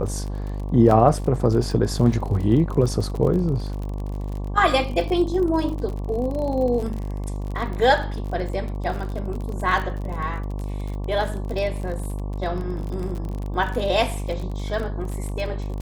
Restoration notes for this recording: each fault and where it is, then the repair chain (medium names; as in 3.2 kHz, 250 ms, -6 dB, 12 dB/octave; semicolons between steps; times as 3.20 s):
buzz 50 Hz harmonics 23 -28 dBFS
crackle 40 per s -29 dBFS
0.91 s: dropout 2.8 ms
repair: de-click; de-hum 50 Hz, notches 23; interpolate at 0.91 s, 2.8 ms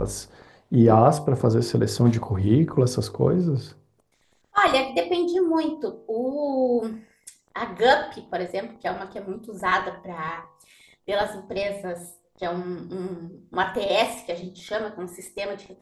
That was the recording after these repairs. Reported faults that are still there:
nothing left